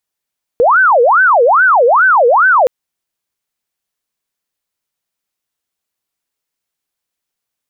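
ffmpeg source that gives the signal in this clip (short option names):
-f lavfi -i "aevalsrc='0.531*sin(2*PI*(1003*t-537/(2*PI*2.4)*sin(2*PI*2.4*t)))':d=2.07:s=44100"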